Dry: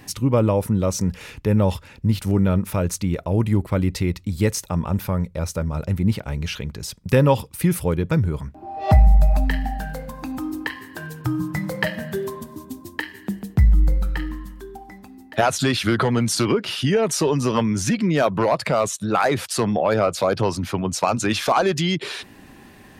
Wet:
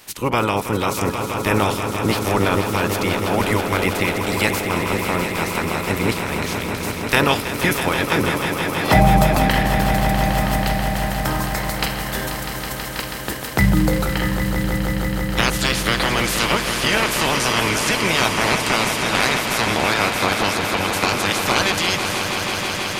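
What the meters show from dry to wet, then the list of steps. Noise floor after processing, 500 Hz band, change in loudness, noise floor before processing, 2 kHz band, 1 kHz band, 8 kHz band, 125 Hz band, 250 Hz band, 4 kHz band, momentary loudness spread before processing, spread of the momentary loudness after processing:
-27 dBFS, +0.5 dB, +2.5 dB, -46 dBFS, +10.5 dB, +6.0 dB, +4.5 dB, -1.5 dB, +0.5 dB, +9.0 dB, 13 LU, 6 LU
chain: spectral limiter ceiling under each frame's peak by 27 dB; swelling echo 0.162 s, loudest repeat 5, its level -10 dB; gain -1 dB

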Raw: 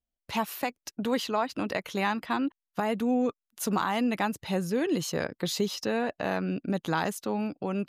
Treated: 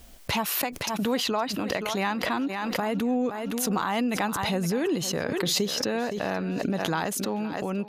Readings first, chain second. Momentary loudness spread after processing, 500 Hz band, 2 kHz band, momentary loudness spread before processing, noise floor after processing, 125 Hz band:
4 LU, +1.5 dB, +3.0 dB, 5 LU, -39 dBFS, +2.5 dB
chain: thinning echo 0.516 s, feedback 28%, high-pass 190 Hz, level -15 dB; backwards sustainer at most 22 dB/s

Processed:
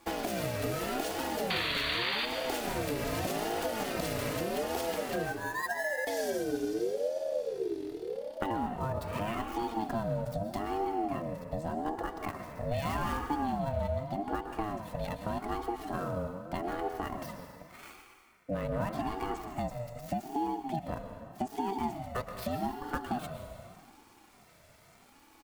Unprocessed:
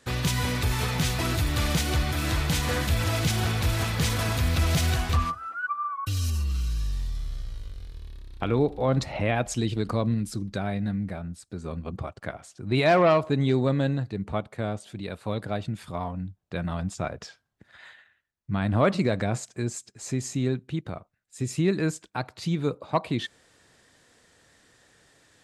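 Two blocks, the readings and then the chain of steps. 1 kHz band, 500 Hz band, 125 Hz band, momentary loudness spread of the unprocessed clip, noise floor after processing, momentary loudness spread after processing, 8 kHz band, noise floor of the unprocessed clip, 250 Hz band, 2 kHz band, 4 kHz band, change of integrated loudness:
-2.0 dB, -5.0 dB, -13.5 dB, 13 LU, -60 dBFS, 7 LU, -9.5 dB, -67 dBFS, -7.0 dB, -5.0 dB, -5.5 dB, -7.0 dB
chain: switching dead time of 0.059 ms; bell 260 Hz +8.5 dB 1.1 oct; comb 3.6 ms, depth 52%; small resonant body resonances 900/2300 Hz, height 8 dB; painted sound noise, 1.5–2.26, 1300–4300 Hz -14 dBFS; notch 3400 Hz, Q 14; compressor 6:1, threshold -29 dBFS, peak gain reduction 17 dB; high shelf 9600 Hz +6 dB; plate-style reverb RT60 2 s, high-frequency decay 0.75×, pre-delay 0.105 s, DRR 5.5 dB; ring modulator with a swept carrier 470 Hz, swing 25%, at 0.83 Hz

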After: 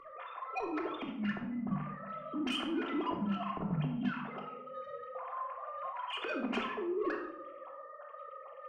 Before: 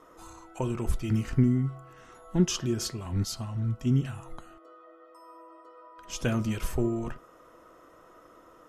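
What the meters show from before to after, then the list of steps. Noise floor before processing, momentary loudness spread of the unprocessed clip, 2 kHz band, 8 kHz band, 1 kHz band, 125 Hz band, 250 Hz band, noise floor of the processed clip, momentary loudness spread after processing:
-55 dBFS, 18 LU, +2.0 dB, under -20 dB, +6.0 dB, -14.5 dB, -6.0 dB, -50 dBFS, 13 LU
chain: sine-wave speech; notches 50/100/150/200/250 Hz; limiter -27 dBFS, peak gain reduction 12 dB; negative-ratio compressor -39 dBFS, ratio -1; flange 0.34 Hz, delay 2.9 ms, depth 2.9 ms, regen -51%; soft clip -37 dBFS, distortion -17 dB; shoebox room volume 2000 m³, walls furnished, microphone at 3.2 m; gain +5.5 dB

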